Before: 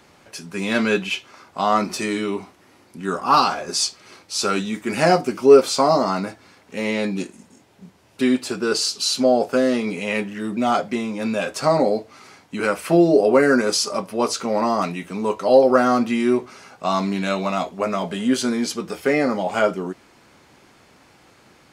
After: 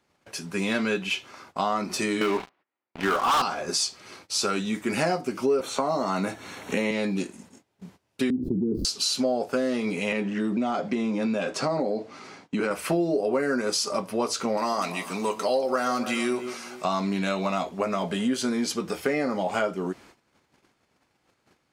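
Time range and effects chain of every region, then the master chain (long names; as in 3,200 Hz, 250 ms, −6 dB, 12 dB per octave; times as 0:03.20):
0:02.21–0:03.42: high-pass filter 1,000 Hz 6 dB per octave + high-frequency loss of the air 370 metres + leveller curve on the samples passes 5
0:05.60–0:06.91: Butterworth band-reject 4,900 Hz, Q 5.2 + multiband upward and downward compressor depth 70%
0:08.30–0:08.85: gap after every zero crossing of 0.061 ms + inverse Chebyshev low-pass filter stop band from 790 Hz, stop band 50 dB + envelope flattener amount 70%
0:10.12–0:12.71: downward compressor 2 to 1, threshold −25 dBFS + band-pass filter 170–7,200 Hz + low-shelf EQ 470 Hz +7 dB
0:14.57–0:16.85: spectral tilt +2.5 dB per octave + delay that swaps between a low-pass and a high-pass 145 ms, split 840 Hz, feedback 56%, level −12.5 dB
whole clip: noise gate −49 dBFS, range −19 dB; downward compressor 4 to 1, threshold −23 dBFS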